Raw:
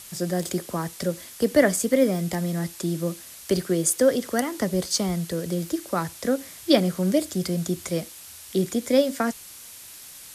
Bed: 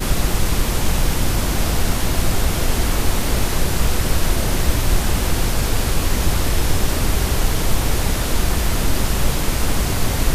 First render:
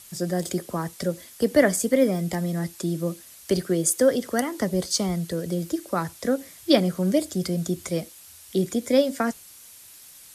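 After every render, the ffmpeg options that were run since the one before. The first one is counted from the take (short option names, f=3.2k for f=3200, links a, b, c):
-af "afftdn=nr=6:nf=-44"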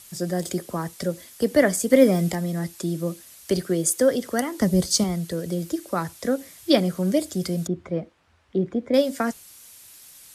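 -filter_complex "[0:a]asettb=1/sr,asplit=3[a][b][c];[a]atrim=end=4.614[d];[b]atrim=start=4.61:end=5.04,asetpts=PTS-STARTPTS,afade=t=in:d=0.004:c=qsin,afade=t=out:st=0.426:d=0.004:c=qsin,bass=f=250:g=9,treble=f=4k:g=4[e];[c]atrim=start=5.036[f];[d][e]acrossfade=d=0.004:c1=hsin:c2=qsin[g];[g][f]acrossfade=d=0.004:c1=qsin:c2=hsin,asettb=1/sr,asplit=3[h][i][j];[h]atrim=end=7.674[k];[i]atrim=start=7.67:end=8.94,asetpts=PTS-STARTPTS,afade=t=in:d=0.004:c=qsin,afade=t=out:st=1.266:d=0.004:c=qsin,lowpass=1.5k[l];[j]atrim=start=8.936[m];[k][l]acrossfade=d=0.004:c1=hsin:c2=qsin[n];[n][m]acrossfade=d=0.004:c1=qsin:c2=hsin,asplit=3[o][p][q];[o]atrim=end=1.902[r];[p]atrim=start=1.898:end=2.322,asetpts=PTS-STARTPTS,volume=4.5dB[s];[q]atrim=start=2.318[t];[r][s]acrossfade=d=0.004:c1=hsin:c2=hsin[u];[u][t]acrossfade=d=0.004:c1=hsin:c2=hsin"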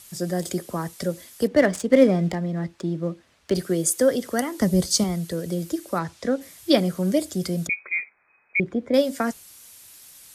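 -filter_complex "[0:a]asettb=1/sr,asplit=3[a][b][c];[a]atrim=end=1.474[d];[b]atrim=start=1.47:end=3.55,asetpts=PTS-STARTPTS,afade=t=in:d=0.004:c=qsin,afade=t=out:st=2.076:d=0.004:c=qsin,adynamicsmooth=sensitivity=3:basefreq=2.4k[e];[c]atrim=start=3.546[f];[d][e]acrossfade=d=0.004:c1=hsin:c2=qsin[g];[g][f]acrossfade=d=0.004:c1=qsin:c2=hsin,asplit=3[h][i][j];[h]afade=t=out:st=5.98:d=0.02[k];[i]lowpass=5.8k,afade=t=in:st=5.98:d=0.02,afade=t=out:st=6.4:d=0.02[l];[j]afade=t=in:st=6.4:d=0.02[m];[k][l][m]amix=inputs=3:normalize=0,asettb=1/sr,asplit=3[n][o][p];[n]atrim=end=7.694[q];[o]atrim=start=7.69:end=8.6,asetpts=PTS-STARTPTS,afade=t=in:d=0.004:c=qsin,afade=t=out:st=0.906:d=0.004:c=qsin,lowpass=f=2.2k:t=q:w=0.5098,lowpass=f=2.2k:t=q:w=0.6013,lowpass=f=2.2k:t=q:w=0.9,lowpass=f=2.2k:t=q:w=2.563,afreqshift=-2600[r];[p]atrim=start=8.596[s];[q][r]acrossfade=d=0.004:c1=hsin:c2=qsin[t];[t][s]acrossfade=d=0.004:c1=qsin:c2=hsin"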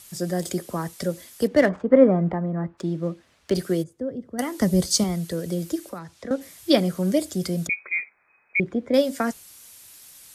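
-filter_complex "[0:a]asplit=3[a][b][c];[a]afade=t=out:st=1.68:d=0.02[d];[b]lowpass=f=1.2k:t=q:w=1.6,afade=t=in:st=1.68:d=0.02,afade=t=out:st=2.77:d=0.02[e];[c]afade=t=in:st=2.77:d=0.02[f];[d][e][f]amix=inputs=3:normalize=0,asplit=3[g][h][i];[g]afade=t=out:st=3.82:d=0.02[j];[h]bandpass=f=100:t=q:w=0.8,afade=t=in:st=3.82:d=0.02,afade=t=out:st=4.38:d=0.02[k];[i]afade=t=in:st=4.38:d=0.02[l];[j][k][l]amix=inputs=3:normalize=0,asettb=1/sr,asplit=3[m][n][o];[m]atrim=end=5.894[p];[n]atrim=start=5.89:end=6.31,asetpts=PTS-STARTPTS,afade=t=in:d=0.004:c=qsin,afade=t=out:st=0.416:d=0.004:c=qsin,acrossover=split=270|2700[q][r][s];[q]acompressor=threshold=-41dB:ratio=4[t];[r]acompressor=threshold=-37dB:ratio=4[u];[s]acompressor=threshold=-55dB:ratio=4[v];[t][u][v]amix=inputs=3:normalize=0[w];[o]atrim=start=6.306[x];[p][w]acrossfade=d=0.004:c1=hsin:c2=qsin[y];[y][x]acrossfade=d=0.004:c1=qsin:c2=hsin"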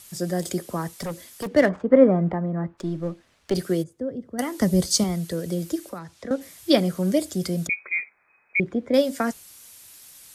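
-filter_complex "[0:a]asettb=1/sr,asplit=3[a][b][c];[a]atrim=end=0.994[d];[b]atrim=start=0.99:end=1.48,asetpts=PTS-STARTPTS,afade=t=in:d=0.004:c=qsin,afade=t=out:st=0.486:d=0.004:c=qsin,asoftclip=type=hard:threshold=-26.5dB[e];[c]atrim=start=1.476[f];[d][e]acrossfade=d=0.004:c1=hsin:c2=qsin[g];[g][f]acrossfade=d=0.004:c1=qsin:c2=hsin,asettb=1/sr,asplit=3[h][i][j];[h]atrim=end=2.744[k];[i]atrim=start=2.74:end=3.54,asetpts=PTS-STARTPTS,afade=t=in:d=0.004:c=qsin,afade=t=out:st=0.796:d=0.004:c=qsin,aeval=exprs='if(lt(val(0),0),0.708*val(0),val(0))':c=same[l];[j]atrim=start=3.536[m];[k][l]acrossfade=d=0.004:c1=hsin:c2=qsin[n];[n][m]acrossfade=d=0.004:c1=qsin:c2=hsin"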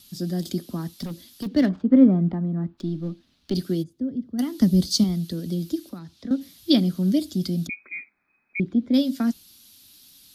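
-af "equalizer=f=125:t=o:w=1:g=-3,equalizer=f=250:t=o:w=1:g=9,equalizer=f=500:t=o:w=1:g=-12,equalizer=f=1k:t=o:w=1:g=-7,equalizer=f=2k:t=o:w=1:g=-10,equalizer=f=4k:t=o:w=1:g=8,equalizer=f=8k:t=o:w=1:g=-12"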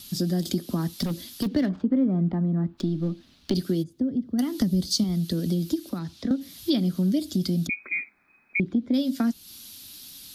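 -filter_complex "[0:a]asplit=2[a][b];[b]alimiter=limit=-14dB:level=0:latency=1:release=124,volume=3dB[c];[a][c]amix=inputs=2:normalize=0,acompressor=threshold=-24dB:ratio=3"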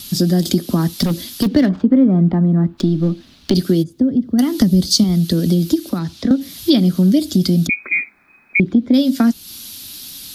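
-af "volume=10.5dB,alimiter=limit=-2dB:level=0:latency=1"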